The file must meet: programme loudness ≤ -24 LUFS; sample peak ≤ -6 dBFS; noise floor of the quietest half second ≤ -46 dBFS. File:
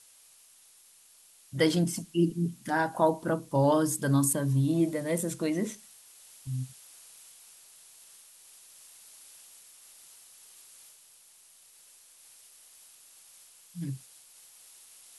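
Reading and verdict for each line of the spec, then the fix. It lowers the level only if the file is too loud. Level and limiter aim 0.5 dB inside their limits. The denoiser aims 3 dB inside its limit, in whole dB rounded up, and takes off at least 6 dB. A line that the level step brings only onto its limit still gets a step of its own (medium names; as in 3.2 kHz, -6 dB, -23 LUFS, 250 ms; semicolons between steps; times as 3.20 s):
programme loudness -28.5 LUFS: pass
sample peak -11.0 dBFS: pass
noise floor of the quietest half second -58 dBFS: pass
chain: none needed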